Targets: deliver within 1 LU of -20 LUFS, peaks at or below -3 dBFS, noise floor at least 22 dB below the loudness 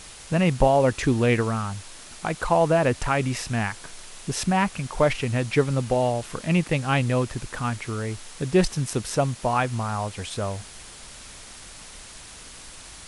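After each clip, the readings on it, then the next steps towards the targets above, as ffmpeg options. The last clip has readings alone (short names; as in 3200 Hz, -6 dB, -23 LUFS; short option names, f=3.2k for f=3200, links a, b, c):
noise floor -44 dBFS; noise floor target -47 dBFS; loudness -24.5 LUFS; peak -6.5 dBFS; loudness target -20.0 LUFS
-> -af "afftdn=nr=6:nf=-44"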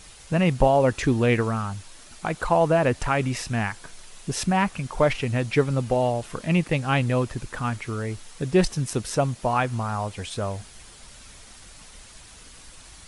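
noise floor -47 dBFS; loudness -24.5 LUFS; peak -6.5 dBFS; loudness target -20.0 LUFS
-> -af "volume=4.5dB,alimiter=limit=-3dB:level=0:latency=1"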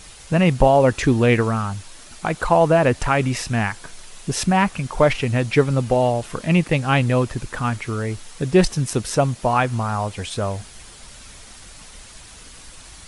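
loudness -20.0 LUFS; peak -3.0 dBFS; noise floor -43 dBFS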